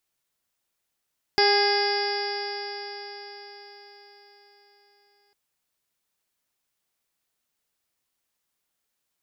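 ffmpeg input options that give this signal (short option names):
-f lavfi -i "aevalsrc='0.0891*pow(10,-3*t/4.89)*sin(2*PI*405.3*t)+0.0794*pow(10,-3*t/4.89)*sin(2*PI*812.43*t)+0.0141*pow(10,-3*t/4.89)*sin(2*PI*1223.17*t)+0.0501*pow(10,-3*t/4.89)*sin(2*PI*1639.32*t)+0.0422*pow(10,-3*t/4.89)*sin(2*PI*2062.62*t)+0.0178*pow(10,-3*t/4.89)*sin(2*PI*2494.75*t)+0.01*pow(10,-3*t/4.89)*sin(2*PI*2937.34*t)+0.0168*pow(10,-3*t/4.89)*sin(2*PI*3391.96*t)+0.01*pow(10,-3*t/4.89)*sin(2*PI*3860.09*t)+0.02*pow(10,-3*t/4.89)*sin(2*PI*4343.14*t)+0.0891*pow(10,-3*t/4.89)*sin(2*PI*4842.44*t)+0.0355*pow(10,-3*t/4.89)*sin(2*PI*5359.24*t)':d=3.95:s=44100"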